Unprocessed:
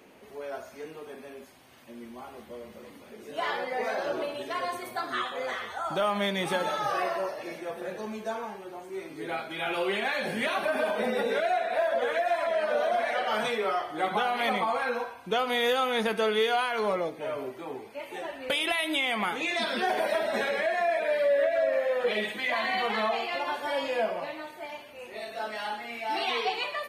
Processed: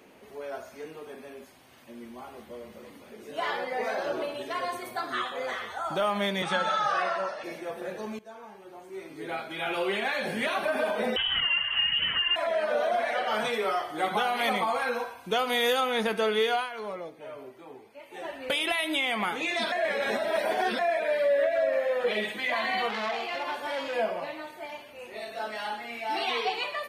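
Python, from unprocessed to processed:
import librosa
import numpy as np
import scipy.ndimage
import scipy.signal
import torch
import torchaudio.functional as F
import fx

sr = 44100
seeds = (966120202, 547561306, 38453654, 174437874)

y = fx.cabinet(x, sr, low_hz=160.0, low_slope=24, high_hz=8200.0, hz=(200.0, 290.0, 410.0, 1400.0, 3500.0), db=(4, -10, -7, 9, 4), at=(6.42, 7.44))
y = fx.freq_invert(y, sr, carrier_hz=3500, at=(11.16, 12.36))
y = fx.high_shelf(y, sr, hz=5100.0, db=7.0, at=(13.53, 15.81))
y = fx.transformer_sat(y, sr, knee_hz=1900.0, at=(22.89, 23.94))
y = fx.edit(y, sr, fx.fade_in_from(start_s=8.19, length_s=1.67, curve='qsin', floor_db=-17.5),
    fx.fade_down_up(start_s=16.53, length_s=1.74, db=-8.5, fade_s=0.17),
    fx.reverse_span(start_s=19.72, length_s=1.07), tone=tone)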